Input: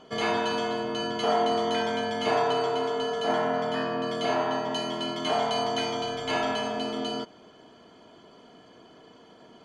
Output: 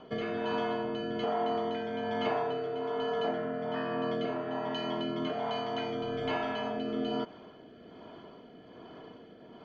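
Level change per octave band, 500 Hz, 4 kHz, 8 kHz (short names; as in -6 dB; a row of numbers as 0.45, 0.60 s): -5.0 dB, -9.5 dB, under -20 dB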